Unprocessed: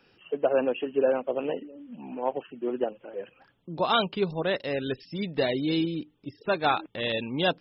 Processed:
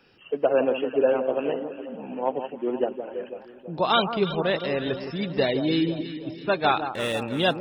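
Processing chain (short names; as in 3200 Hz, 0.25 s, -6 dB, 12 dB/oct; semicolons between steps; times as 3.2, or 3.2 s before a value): 6.81–7.23 median filter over 9 samples; echo with dull and thin repeats by turns 0.165 s, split 1300 Hz, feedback 70%, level -8.5 dB; gain +2.5 dB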